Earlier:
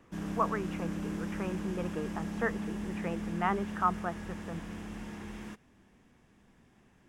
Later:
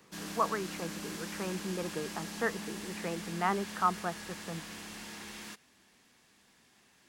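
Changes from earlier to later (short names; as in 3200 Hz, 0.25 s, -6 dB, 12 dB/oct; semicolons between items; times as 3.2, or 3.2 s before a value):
background: add tilt +3.5 dB/oct; master: add bell 4300 Hz +9 dB 0.38 oct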